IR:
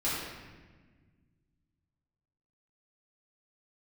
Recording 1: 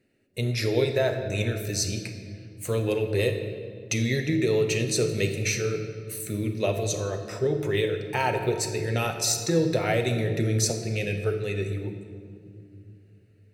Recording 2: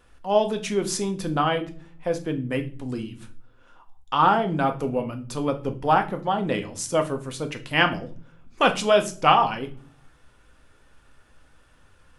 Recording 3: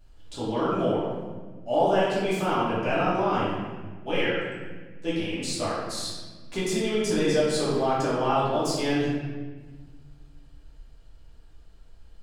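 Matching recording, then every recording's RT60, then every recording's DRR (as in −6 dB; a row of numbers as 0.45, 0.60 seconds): 3; non-exponential decay, non-exponential decay, 1.4 s; 5.0, 5.5, −10.5 decibels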